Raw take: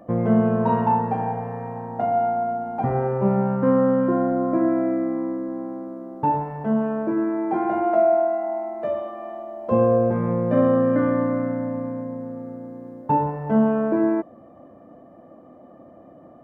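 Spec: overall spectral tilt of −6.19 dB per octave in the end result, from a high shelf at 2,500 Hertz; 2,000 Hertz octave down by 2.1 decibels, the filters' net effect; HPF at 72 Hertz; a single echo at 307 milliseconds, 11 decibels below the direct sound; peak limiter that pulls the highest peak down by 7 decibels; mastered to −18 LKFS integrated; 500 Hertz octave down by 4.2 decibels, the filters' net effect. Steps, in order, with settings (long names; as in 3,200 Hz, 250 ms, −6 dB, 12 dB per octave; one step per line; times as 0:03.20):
high-pass filter 72 Hz
parametric band 500 Hz −5.5 dB
parametric band 2,000 Hz −5 dB
high-shelf EQ 2,500 Hz +6 dB
brickwall limiter −16.5 dBFS
single-tap delay 307 ms −11 dB
level +8 dB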